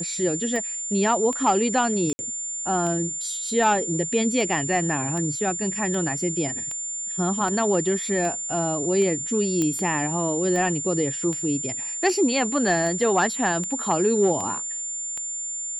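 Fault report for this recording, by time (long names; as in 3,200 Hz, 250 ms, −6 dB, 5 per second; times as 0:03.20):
scratch tick 78 rpm −18 dBFS
whistle 7,200 Hz −28 dBFS
0:02.13–0:02.19: drop-out 60 ms
0:09.62: click −12 dBFS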